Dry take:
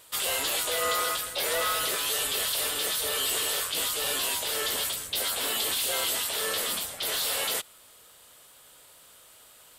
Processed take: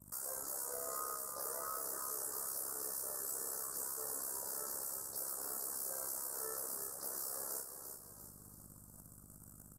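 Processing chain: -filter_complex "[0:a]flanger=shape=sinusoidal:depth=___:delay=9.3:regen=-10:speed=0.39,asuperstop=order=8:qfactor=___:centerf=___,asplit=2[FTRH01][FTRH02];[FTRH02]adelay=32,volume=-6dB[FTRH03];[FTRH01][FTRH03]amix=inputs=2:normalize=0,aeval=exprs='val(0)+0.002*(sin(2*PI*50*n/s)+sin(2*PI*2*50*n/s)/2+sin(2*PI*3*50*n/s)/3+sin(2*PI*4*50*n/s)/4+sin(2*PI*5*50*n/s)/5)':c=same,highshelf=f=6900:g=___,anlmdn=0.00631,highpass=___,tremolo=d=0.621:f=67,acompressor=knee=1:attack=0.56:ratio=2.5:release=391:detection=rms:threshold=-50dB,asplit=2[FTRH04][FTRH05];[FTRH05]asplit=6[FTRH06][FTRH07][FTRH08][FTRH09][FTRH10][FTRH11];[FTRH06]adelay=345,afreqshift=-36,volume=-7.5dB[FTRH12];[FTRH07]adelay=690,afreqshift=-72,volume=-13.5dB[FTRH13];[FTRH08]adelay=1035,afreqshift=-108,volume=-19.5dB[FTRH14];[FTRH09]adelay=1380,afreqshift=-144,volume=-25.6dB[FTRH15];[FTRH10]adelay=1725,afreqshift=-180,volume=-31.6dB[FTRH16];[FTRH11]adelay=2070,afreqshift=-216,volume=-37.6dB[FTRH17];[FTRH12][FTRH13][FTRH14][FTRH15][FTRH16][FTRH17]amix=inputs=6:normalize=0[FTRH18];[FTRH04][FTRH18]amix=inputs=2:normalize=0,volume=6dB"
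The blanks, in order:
2.1, 0.74, 2900, 7, 110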